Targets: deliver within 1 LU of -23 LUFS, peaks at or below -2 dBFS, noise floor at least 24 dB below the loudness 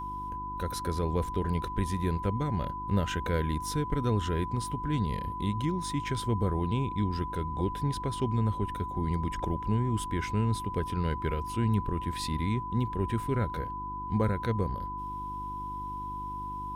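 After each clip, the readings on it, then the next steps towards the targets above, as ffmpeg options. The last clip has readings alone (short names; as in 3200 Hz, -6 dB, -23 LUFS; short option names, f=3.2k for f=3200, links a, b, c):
hum 50 Hz; harmonics up to 350 Hz; hum level -41 dBFS; steady tone 1000 Hz; tone level -35 dBFS; loudness -31.5 LUFS; peak -14.5 dBFS; loudness target -23.0 LUFS
-> -af "bandreject=f=50:t=h:w=4,bandreject=f=100:t=h:w=4,bandreject=f=150:t=h:w=4,bandreject=f=200:t=h:w=4,bandreject=f=250:t=h:w=4,bandreject=f=300:t=h:w=4,bandreject=f=350:t=h:w=4"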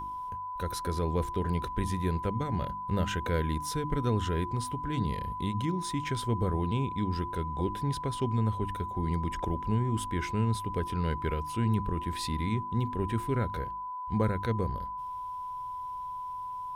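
hum none; steady tone 1000 Hz; tone level -35 dBFS
-> -af "bandreject=f=1k:w=30"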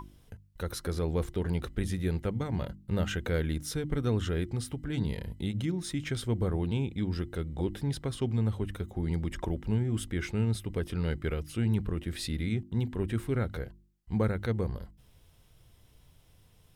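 steady tone none; loudness -32.5 LUFS; peak -15.5 dBFS; loudness target -23.0 LUFS
-> -af "volume=9.5dB"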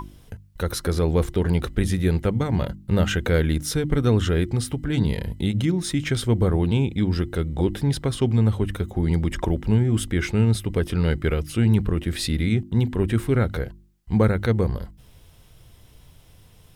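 loudness -23.0 LUFS; peak -6.0 dBFS; noise floor -52 dBFS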